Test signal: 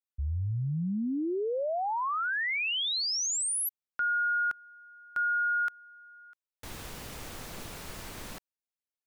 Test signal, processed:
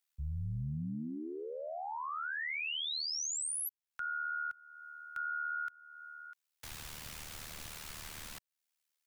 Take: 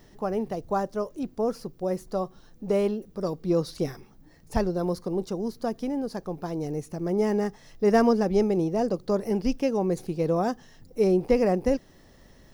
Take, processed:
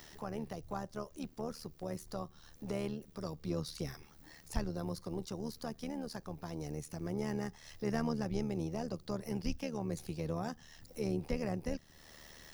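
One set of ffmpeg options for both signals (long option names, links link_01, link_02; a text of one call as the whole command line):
ffmpeg -i in.wav -filter_complex "[0:a]tiltshelf=frequency=660:gain=-8.5,tremolo=f=76:d=0.71,acrossover=split=190[link_01][link_02];[link_02]acompressor=threshold=-53dB:ratio=2:attack=0.17:release=437:knee=2.83:detection=peak[link_03];[link_01][link_03]amix=inputs=2:normalize=0,volume=5dB" out.wav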